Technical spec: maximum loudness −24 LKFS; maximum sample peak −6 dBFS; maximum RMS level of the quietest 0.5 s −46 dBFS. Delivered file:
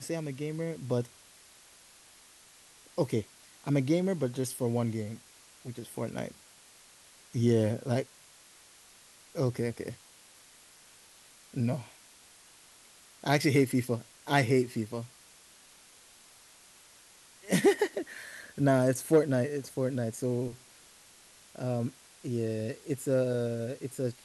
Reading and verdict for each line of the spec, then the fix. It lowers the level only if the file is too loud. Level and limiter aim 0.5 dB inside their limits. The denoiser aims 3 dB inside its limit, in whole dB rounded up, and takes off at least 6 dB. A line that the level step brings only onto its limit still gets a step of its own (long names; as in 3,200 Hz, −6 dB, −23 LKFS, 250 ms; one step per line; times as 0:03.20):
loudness −31.0 LKFS: in spec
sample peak −12.0 dBFS: in spec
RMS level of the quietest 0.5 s −57 dBFS: in spec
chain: no processing needed